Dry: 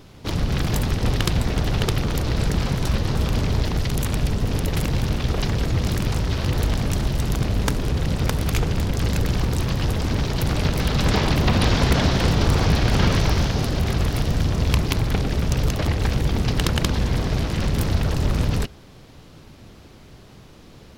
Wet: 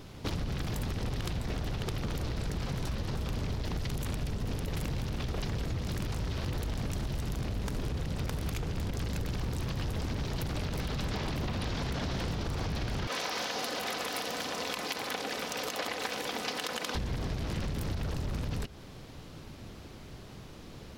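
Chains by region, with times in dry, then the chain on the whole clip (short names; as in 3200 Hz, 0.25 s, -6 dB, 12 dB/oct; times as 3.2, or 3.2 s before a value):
13.07–16.95 HPF 540 Hz + comb 4 ms, depth 43%
whole clip: limiter -16 dBFS; compressor, threshold -29 dBFS; gain -1.5 dB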